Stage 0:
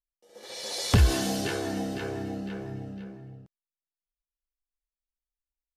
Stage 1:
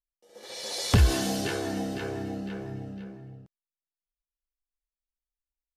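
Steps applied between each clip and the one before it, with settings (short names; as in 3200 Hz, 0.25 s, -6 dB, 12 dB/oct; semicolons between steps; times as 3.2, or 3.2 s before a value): nothing audible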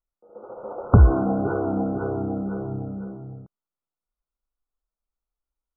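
brick-wall FIR low-pass 1500 Hz; gain +7 dB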